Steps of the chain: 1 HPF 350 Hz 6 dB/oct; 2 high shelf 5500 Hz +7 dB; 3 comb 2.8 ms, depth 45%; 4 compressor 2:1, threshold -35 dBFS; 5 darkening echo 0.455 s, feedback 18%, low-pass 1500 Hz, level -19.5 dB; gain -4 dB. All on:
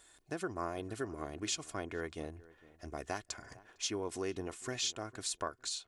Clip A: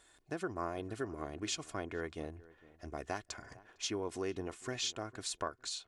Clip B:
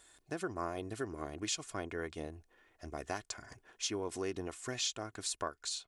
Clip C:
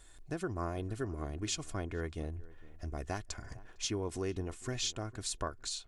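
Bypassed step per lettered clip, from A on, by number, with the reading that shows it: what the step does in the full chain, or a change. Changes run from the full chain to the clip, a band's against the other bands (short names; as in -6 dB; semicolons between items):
2, 8 kHz band -3.0 dB; 5, echo-to-direct -22.5 dB to none; 1, 125 Hz band +9.0 dB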